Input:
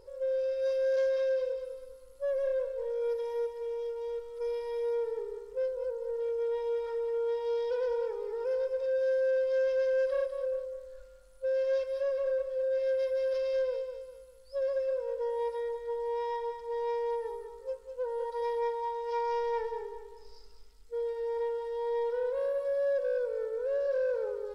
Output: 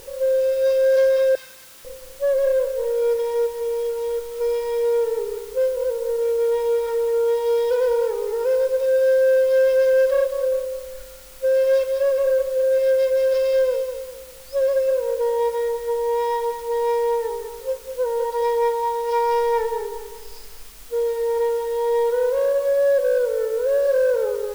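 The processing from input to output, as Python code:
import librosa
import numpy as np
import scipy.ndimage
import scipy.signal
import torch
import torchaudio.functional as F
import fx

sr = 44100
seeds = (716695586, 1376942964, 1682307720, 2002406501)

p1 = fx.highpass(x, sr, hz=1300.0, slope=24, at=(1.35, 1.85))
p2 = fx.quant_dither(p1, sr, seeds[0], bits=8, dither='triangular')
p3 = p1 + (p2 * librosa.db_to_amplitude(-5.0))
y = p3 * librosa.db_to_amplitude(7.5)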